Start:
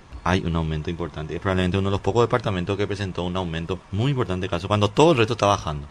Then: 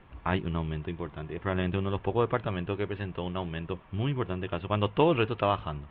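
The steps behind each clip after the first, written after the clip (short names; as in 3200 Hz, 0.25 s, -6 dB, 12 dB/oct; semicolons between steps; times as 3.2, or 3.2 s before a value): steep low-pass 3300 Hz 48 dB/oct; gain -7.5 dB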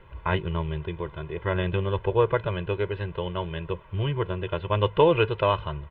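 comb 2 ms, depth 80%; gain +1.5 dB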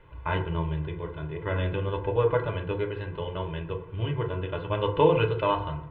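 FDN reverb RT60 0.61 s, low-frequency decay 1.25×, high-frequency decay 0.4×, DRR 2.5 dB; gain -4.5 dB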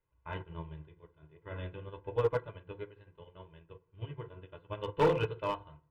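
hard clip -17 dBFS, distortion -15 dB; upward expander 2.5:1, over -38 dBFS; gain -2.5 dB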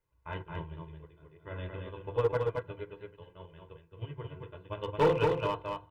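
echo 0.221 s -4 dB; gain +1 dB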